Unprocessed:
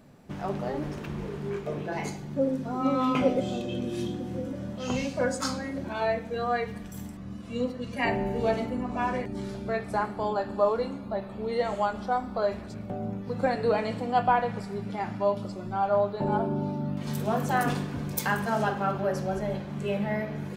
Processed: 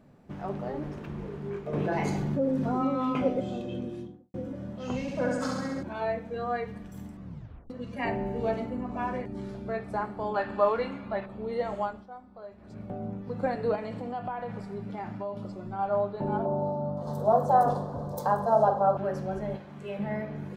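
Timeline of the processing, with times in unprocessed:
0:01.73–0:02.85: envelope flattener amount 70%
0:03.72–0:04.34: fade out and dull
0:05.01–0:05.83: flutter between parallel walls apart 11.5 metres, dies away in 1.2 s
0:07.25: tape stop 0.45 s
0:10.34–0:11.26: parametric band 2,200 Hz +14 dB 1.8 octaves
0:11.82–0:12.81: duck −14.5 dB, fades 0.24 s
0:13.75–0:15.79: downward compressor 4 to 1, threshold −28 dBFS
0:16.45–0:18.97: drawn EQ curve 140 Hz 0 dB, 340 Hz −5 dB, 550 Hz +13 dB, 1,100 Hz +6 dB, 2,400 Hz −22 dB, 4,000 Hz −2 dB
0:19.56–0:19.99: low-shelf EQ 430 Hz −9 dB
whole clip: high-shelf EQ 2,800 Hz −10 dB; level −2.5 dB

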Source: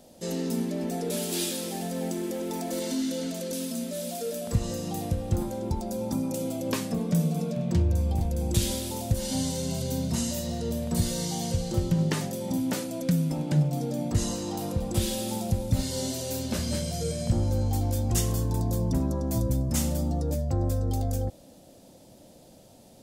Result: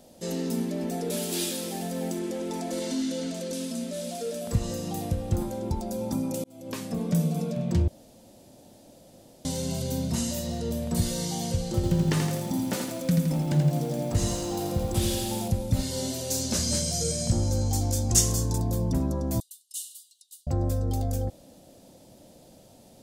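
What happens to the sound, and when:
0:02.19–0:04.41: low-pass filter 9,500 Hz
0:06.44–0:07.06: fade in
0:07.88–0:09.45: fill with room tone
0:11.75–0:15.48: feedback echo at a low word length 83 ms, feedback 55%, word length 8 bits, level −4.5 dB
0:16.30–0:18.58: drawn EQ curve 3,000 Hz 0 dB, 6,400 Hz +12 dB, 14,000 Hz +1 dB
0:19.40–0:20.47: Chebyshev high-pass with heavy ripple 2,800 Hz, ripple 9 dB

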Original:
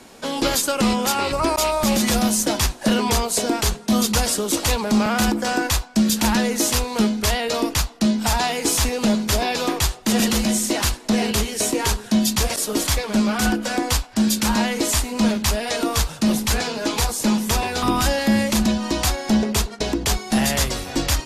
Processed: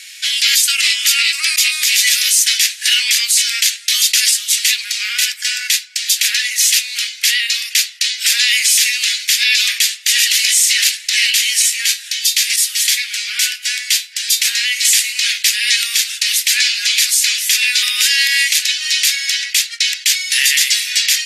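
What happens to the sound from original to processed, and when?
0:04.31–0:07.71: flanger 1.8 Hz, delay 4.1 ms, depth 3.6 ms, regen −63%
0:11.62–0:14.85: tuned comb filter 85 Hz, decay 0.22 s
whole clip: Butterworth high-pass 1,900 Hz 48 dB per octave; high-shelf EQ 6,600 Hz −4.5 dB; boost into a limiter +18.5 dB; level −1 dB

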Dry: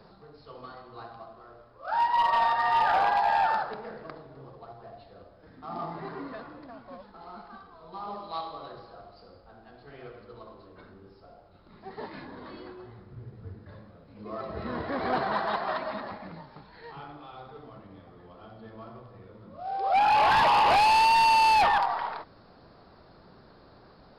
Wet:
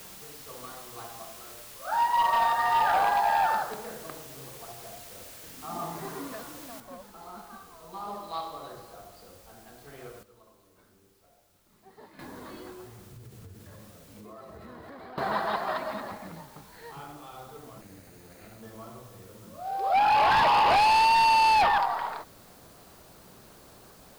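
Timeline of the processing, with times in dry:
0:06.80: noise floor change −47 dB −57 dB
0:10.23–0:12.19: clip gain −12 dB
0:12.85–0:15.18: downward compressor, threshold −43 dBFS
0:17.81–0:18.63: lower of the sound and its delayed copy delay 0.46 ms

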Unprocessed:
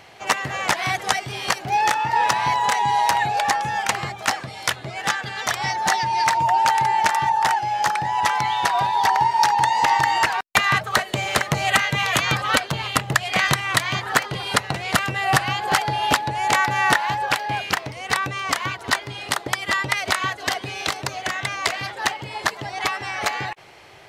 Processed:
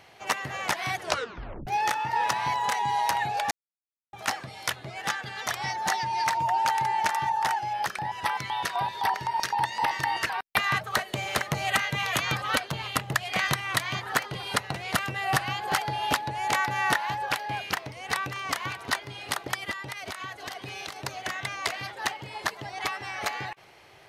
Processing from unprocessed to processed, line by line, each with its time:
0:00.98: tape stop 0.69 s
0:03.51–0:04.13: silence
0:07.73–0:10.58: auto-filter notch square 3.9 Hz 850–6,800 Hz
0:17.43–0:18.27: delay throw 590 ms, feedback 75%, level −15.5 dB
0:19.71–0:20.99: downward compressor 5 to 1, threshold −26 dBFS
whole clip: parametric band 12,000 Hz +4.5 dB 0.29 octaves; notch filter 7,500 Hz, Q 18; level −7 dB

